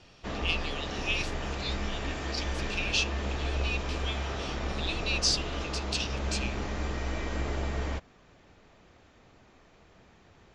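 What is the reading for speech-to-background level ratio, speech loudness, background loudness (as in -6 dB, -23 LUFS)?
1.0 dB, -33.5 LUFS, -34.5 LUFS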